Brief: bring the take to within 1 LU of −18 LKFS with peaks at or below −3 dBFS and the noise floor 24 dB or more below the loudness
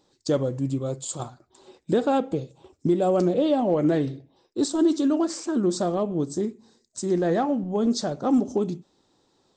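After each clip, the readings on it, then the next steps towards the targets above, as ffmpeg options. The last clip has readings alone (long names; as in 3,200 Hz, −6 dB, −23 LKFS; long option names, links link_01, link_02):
integrated loudness −24.5 LKFS; sample peak −11.0 dBFS; target loudness −18.0 LKFS
→ -af "volume=6.5dB"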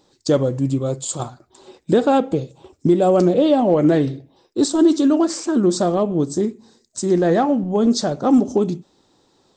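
integrated loudness −18.0 LKFS; sample peak −4.5 dBFS; background noise floor −61 dBFS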